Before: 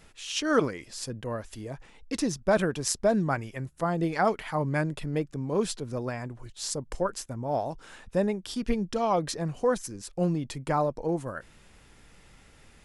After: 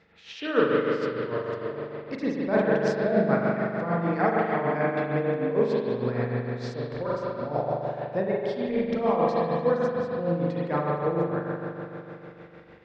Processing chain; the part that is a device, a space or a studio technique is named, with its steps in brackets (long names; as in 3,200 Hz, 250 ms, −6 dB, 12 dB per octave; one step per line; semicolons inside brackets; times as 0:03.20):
combo amplifier with spring reverb and tremolo (spring reverb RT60 3.4 s, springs 41 ms, chirp 35 ms, DRR −6 dB; amplitude tremolo 6.6 Hz, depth 56%; loudspeaker in its box 94–4,300 Hz, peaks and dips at 460 Hz +6 dB, 1,900 Hz +5 dB, 3,000 Hz −5 dB)
level −3 dB